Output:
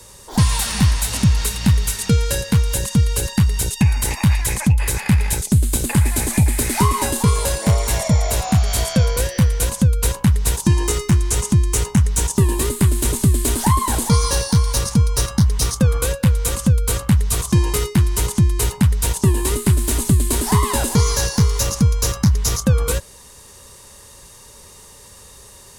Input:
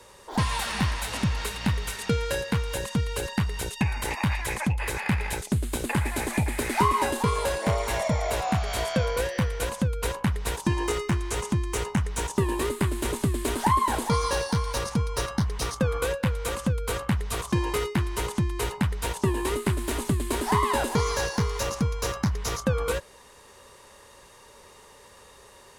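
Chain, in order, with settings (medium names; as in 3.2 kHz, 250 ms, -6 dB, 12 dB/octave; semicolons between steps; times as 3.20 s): tone controls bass +11 dB, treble +13 dB; trim +1.5 dB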